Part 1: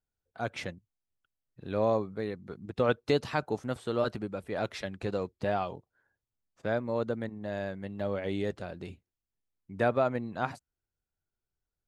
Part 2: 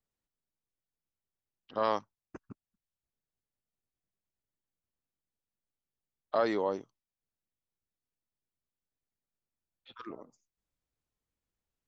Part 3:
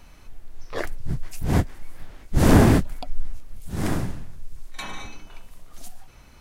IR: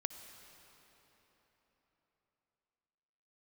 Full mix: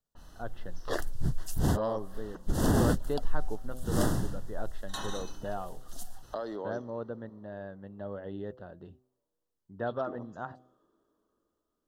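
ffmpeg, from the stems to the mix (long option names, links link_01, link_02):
-filter_complex "[0:a]lowpass=2200,bandreject=frequency=127.1:width_type=h:width=4,bandreject=frequency=254.2:width_type=h:width=4,bandreject=frequency=381.3:width_type=h:width=4,bandreject=frequency=508.4:width_type=h:width=4,bandreject=frequency=635.5:width_type=h:width=4,bandreject=frequency=762.6:width_type=h:width=4,volume=-6.5dB[link_01];[1:a]acrossover=split=730|1600[link_02][link_03][link_04];[link_02]acompressor=threshold=-37dB:ratio=4[link_05];[link_03]acompressor=threshold=-48dB:ratio=4[link_06];[link_04]acompressor=threshold=-53dB:ratio=4[link_07];[link_05][link_06][link_07]amix=inputs=3:normalize=0,volume=-3.5dB,asplit=3[link_08][link_09][link_10];[link_09]volume=-3.5dB[link_11];[2:a]alimiter=limit=-13.5dB:level=0:latency=1:release=186,adynamicequalizer=threshold=0.00398:dfrequency=4100:dqfactor=0.7:tfrequency=4100:tqfactor=0.7:attack=5:release=100:ratio=0.375:range=2:mode=boostabove:tftype=highshelf,adelay=150,volume=-2.5dB[link_12];[link_10]apad=whole_len=289225[link_13];[link_12][link_13]sidechaincompress=threshold=-51dB:ratio=8:attack=16:release=236[link_14];[3:a]atrim=start_sample=2205[link_15];[link_11][link_15]afir=irnorm=-1:irlink=0[link_16];[link_01][link_08][link_14][link_16]amix=inputs=4:normalize=0,asuperstop=centerf=2300:order=4:qfactor=2.2"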